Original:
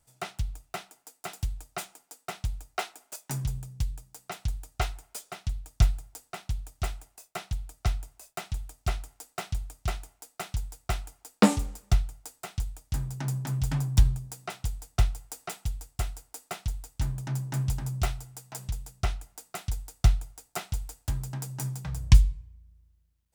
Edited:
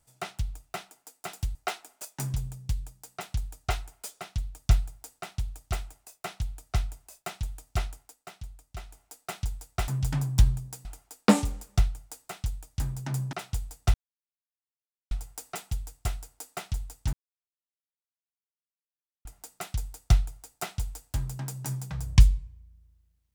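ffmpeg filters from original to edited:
ffmpeg -i in.wav -filter_complex "[0:a]asplit=10[link_01][link_02][link_03][link_04][link_05][link_06][link_07][link_08][link_09][link_10];[link_01]atrim=end=1.552[link_11];[link_02]atrim=start=2.658:end=9.27,asetpts=PTS-STARTPTS,afade=type=out:start_time=6.272:duration=0.34:curve=qsin:silence=0.316228[link_12];[link_03]atrim=start=9.27:end=9.97,asetpts=PTS-STARTPTS,volume=-10dB[link_13];[link_04]atrim=start=9.97:end=10.992,asetpts=PTS-STARTPTS,afade=type=in:duration=0.34:curve=qsin:silence=0.316228[link_14];[link_05]atrim=start=13.468:end=14.442[link_15];[link_06]atrim=start=10.988:end=13.472[link_16];[link_07]atrim=start=14.438:end=15.05,asetpts=PTS-STARTPTS,afade=type=out:start_time=0.608:duration=0.004:curve=hsin,apad=pad_dur=1.17[link_17];[link_08]atrim=start=15.05:end=17.07,asetpts=PTS-STARTPTS,afade=type=in:duration=0.004:curve=hsin,afade=type=out:start_time=2.016:duration=0.004:curve=hsin[link_18];[link_09]atrim=start=17.07:end=19.19,asetpts=PTS-STARTPTS,volume=0[link_19];[link_10]atrim=start=19.19,asetpts=PTS-STARTPTS,afade=type=in:duration=0.004:curve=hsin[link_20];[link_12][link_13][link_14]concat=n=3:v=0:a=1[link_21];[link_11][link_21]acrossfade=duration=0.004:curve1=hsin:curve2=hsin[link_22];[link_22][link_15]acrossfade=duration=0.004:curve1=hsin:curve2=hsin[link_23];[link_23][link_16]acrossfade=duration=0.004:curve1=hsin:curve2=hsin[link_24];[link_17][link_18][link_19][link_20]concat=n=4:v=0:a=1[link_25];[link_24][link_25]acrossfade=duration=0.004:curve1=hsin:curve2=hsin" out.wav

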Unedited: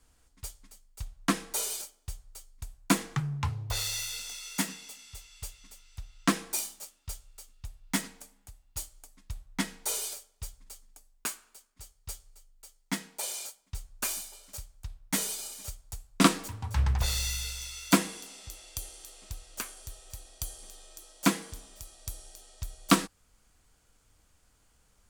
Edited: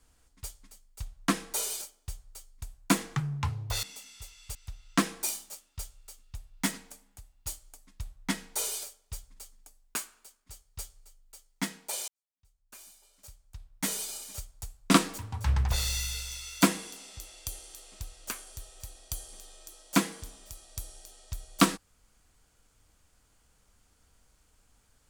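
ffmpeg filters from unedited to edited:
ffmpeg -i in.wav -filter_complex "[0:a]asplit=4[link_01][link_02][link_03][link_04];[link_01]atrim=end=3.832[link_05];[link_02]atrim=start=4.758:end=5.482[link_06];[link_03]atrim=start=5.848:end=13.38,asetpts=PTS-STARTPTS,afade=type=out:start_time=7.528:duration=0.004:curve=hsin[link_07];[link_04]atrim=start=13.38,asetpts=PTS-STARTPTS,afade=type=in:duration=1.99:curve=qua[link_08];[link_05][link_06]acrossfade=duration=0.004:curve1=hsin:curve2=hsin[link_09];[link_07][link_08]concat=n=2:v=0:a=1[link_10];[link_09][link_10]acrossfade=duration=0.004:curve1=hsin:curve2=hsin" out.wav

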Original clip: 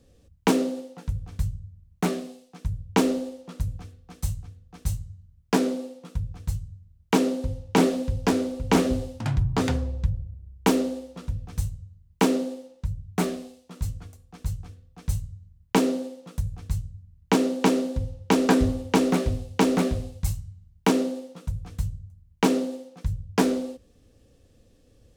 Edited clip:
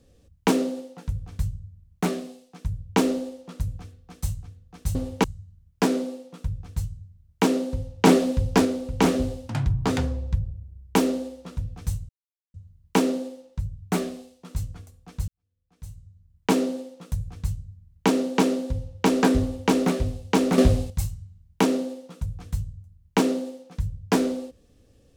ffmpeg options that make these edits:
ffmpeg -i in.wav -filter_complex "[0:a]asplit=9[link_01][link_02][link_03][link_04][link_05][link_06][link_07][link_08][link_09];[link_01]atrim=end=4.952[link_10];[link_02]atrim=start=18.678:end=18.972[link_11];[link_03]atrim=start=4.948:end=7.752[link_12];[link_04]atrim=start=7.748:end=8.362,asetpts=PTS-STARTPTS,volume=3.5dB[link_13];[link_05]atrim=start=8.358:end=11.8,asetpts=PTS-STARTPTS,afade=type=out:start_time=3.438:duration=0.004:curve=hsin,apad=pad_dur=0.45[link_14];[link_06]atrim=start=11.8:end=14.54,asetpts=PTS-STARTPTS,afade=type=in:duration=0.004:curve=hsin,afade=type=out:start_time=2.736:duration=0.004:curve=hsin[link_15];[link_07]atrim=start=14.54:end=19.842,asetpts=PTS-STARTPTS,afade=type=in:duration=1.26:curve=qua[link_16];[link_08]atrim=start=19.838:end=20.162,asetpts=PTS-STARTPTS,volume=9.5dB[link_17];[link_09]atrim=start=20.158[link_18];[link_10][link_11]acrossfade=duration=0.004:curve1=hsin:curve2=hsin[link_19];[link_19][link_12]acrossfade=duration=0.004:curve1=hsin:curve2=hsin[link_20];[link_20][link_13]acrossfade=duration=0.004:curve1=hsin:curve2=hsin[link_21];[link_14][link_15][link_16]concat=n=3:v=0:a=1[link_22];[link_21][link_22]acrossfade=duration=0.004:curve1=hsin:curve2=hsin[link_23];[link_23][link_17]acrossfade=duration=0.004:curve1=hsin:curve2=hsin[link_24];[link_24][link_18]acrossfade=duration=0.004:curve1=hsin:curve2=hsin" out.wav

